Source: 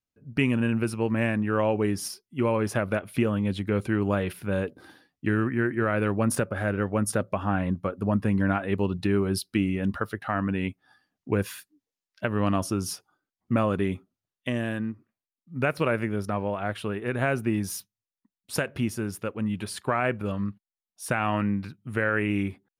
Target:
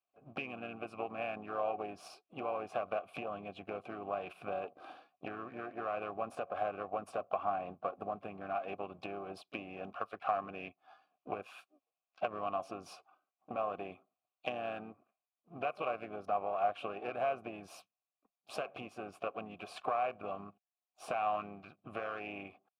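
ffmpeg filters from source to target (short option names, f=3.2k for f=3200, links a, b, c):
-filter_complex "[0:a]aeval=exprs='if(lt(val(0),0),0.447*val(0),val(0))':c=same,acompressor=threshold=-36dB:ratio=10,asplit=3[a][b][c];[b]asetrate=37084,aresample=44100,atempo=1.18921,volume=-10dB[d];[c]asetrate=55563,aresample=44100,atempo=0.793701,volume=-15dB[e];[a][d][e]amix=inputs=3:normalize=0,asplit=3[f][g][h];[f]bandpass=f=730:t=q:w=8,volume=0dB[i];[g]bandpass=f=1.09k:t=q:w=8,volume=-6dB[j];[h]bandpass=f=2.44k:t=q:w=8,volume=-9dB[k];[i][j][k]amix=inputs=3:normalize=0,volume=16dB"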